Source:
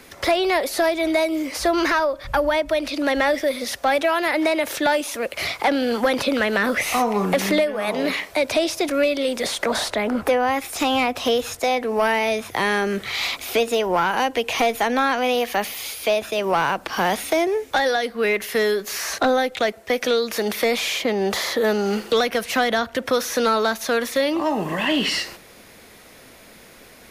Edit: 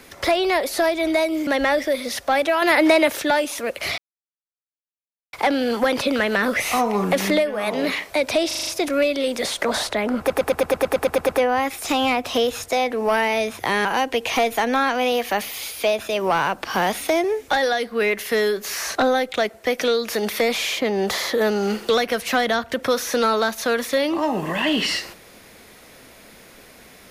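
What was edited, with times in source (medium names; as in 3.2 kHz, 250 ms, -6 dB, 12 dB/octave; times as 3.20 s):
1.47–3.03 s: delete
4.18–4.66 s: gain +5 dB
5.54 s: insert silence 1.35 s
8.68 s: stutter 0.04 s, 6 plays
10.20 s: stutter 0.11 s, 11 plays
12.76–14.08 s: delete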